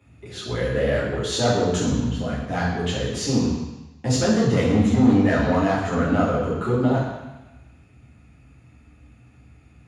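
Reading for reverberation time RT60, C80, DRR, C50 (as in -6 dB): 1.0 s, 4.5 dB, -6.5 dB, 1.5 dB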